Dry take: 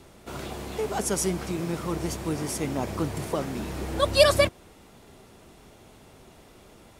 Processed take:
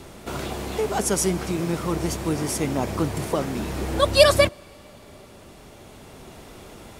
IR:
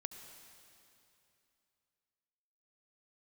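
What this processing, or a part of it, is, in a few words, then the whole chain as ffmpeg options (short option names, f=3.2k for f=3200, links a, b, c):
ducked reverb: -filter_complex "[0:a]asplit=3[a][b][c];[1:a]atrim=start_sample=2205[d];[b][d]afir=irnorm=-1:irlink=0[e];[c]apad=whole_len=308403[f];[e][f]sidechaincompress=threshold=-39dB:ratio=8:attack=16:release=1200,volume=3dB[g];[a][g]amix=inputs=2:normalize=0,volume=3dB"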